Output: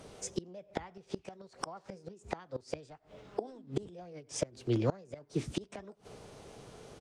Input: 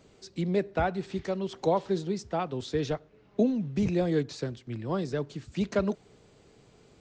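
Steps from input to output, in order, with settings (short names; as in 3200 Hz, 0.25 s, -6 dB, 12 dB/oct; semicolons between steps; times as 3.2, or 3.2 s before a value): formant shift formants +5 st; outdoor echo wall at 16 m, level -29 dB; flipped gate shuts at -25 dBFS, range -28 dB; gain +6.5 dB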